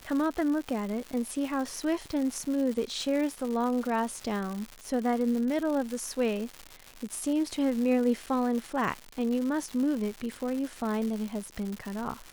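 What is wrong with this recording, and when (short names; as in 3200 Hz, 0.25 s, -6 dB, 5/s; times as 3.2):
crackle 250/s -33 dBFS
8.26–8.27 gap 7.1 ms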